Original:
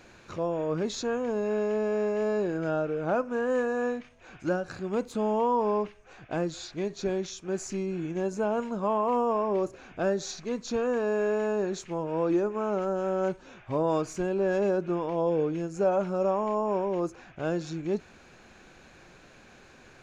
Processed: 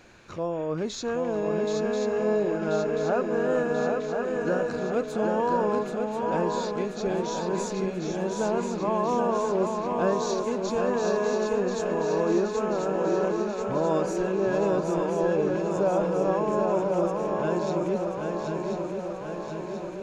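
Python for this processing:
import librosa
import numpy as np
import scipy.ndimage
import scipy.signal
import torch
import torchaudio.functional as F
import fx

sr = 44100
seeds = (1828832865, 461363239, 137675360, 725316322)

y = fx.echo_swing(x, sr, ms=1035, ratio=3, feedback_pct=62, wet_db=-4.5)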